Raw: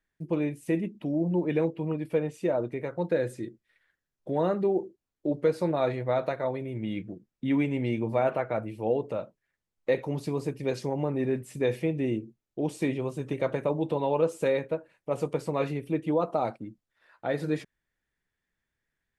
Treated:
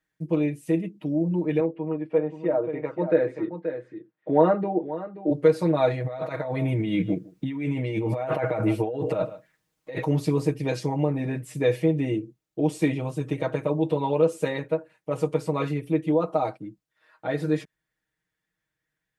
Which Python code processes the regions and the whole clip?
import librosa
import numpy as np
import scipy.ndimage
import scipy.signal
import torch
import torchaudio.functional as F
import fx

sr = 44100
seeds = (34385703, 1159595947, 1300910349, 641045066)

y = fx.chain(x, sr, fx.bandpass_edges(low_hz=210.0, high_hz=2000.0),
    fx.echo_single(ms=530, db=-11.0), at=(1.6, 5.31))
y = fx.chain(y, sr, fx.echo_single(ms=155, db=-23.0),
    fx.over_compress(threshold_db=-35.0, ratio=-1.0), at=(6.04, 10.04))
y = y + 0.91 * np.pad(y, (int(6.4 * sr / 1000.0), 0))[:len(y)]
y = fx.rider(y, sr, range_db=10, speed_s=2.0)
y = scipy.signal.sosfilt(scipy.signal.butter(2, 52.0, 'highpass', fs=sr, output='sos'), y)